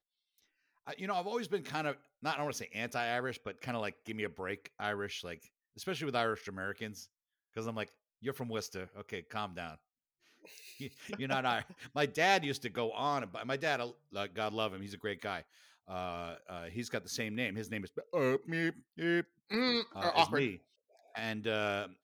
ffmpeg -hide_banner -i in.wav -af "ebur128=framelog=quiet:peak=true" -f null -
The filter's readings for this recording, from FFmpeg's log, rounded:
Integrated loudness:
  I:         -36.5 LUFS
  Threshold: -47.0 LUFS
Loudness range:
  LRA:         8.3 LU
  Threshold: -57.2 LUFS
  LRA low:   -42.3 LUFS
  LRA high:  -34.0 LUFS
True peak:
  Peak:      -14.7 dBFS